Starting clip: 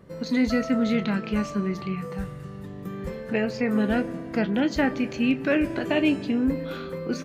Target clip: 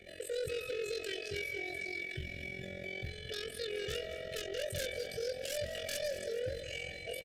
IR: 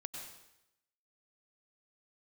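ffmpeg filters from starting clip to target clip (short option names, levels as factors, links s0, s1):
-filter_complex "[0:a]equalizer=f=1100:t=o:w=1.7:g=9.5,aecho=1:1:3.3:0.87,asubboost=boost=3.5:cutoff=82,asetrate=85689,aresample=44100,atempo=0.514651,acrossover=split=390|1000[s0][s1][s2];[s2]aeval=exprs='(mod(4.47*val(0)+1,2)-1)/4.47':c=same[s3];[s0][s1][s3]amix=inputs=3:normalize=0,tremolo=f=44:d=0.857,asoftclip=type=tanh:threshold=0.0841,alimiter=level_in=1.78:limit=0.0631:level=0:latency=1:release=80,volume=0.562,asuperstop=centerf=1000:order=8:qfactor=1.2,asplit=2[s4][s5];[s5]aecho=0:1:211|422|633|844|1055|1266:0.211|0.125|0.0736|0.0434|0.0256|0.0151[s6];[s4][s6]amix=inputs=2:normalize=0,aresample=32000,aresample=44100,volume=0.708"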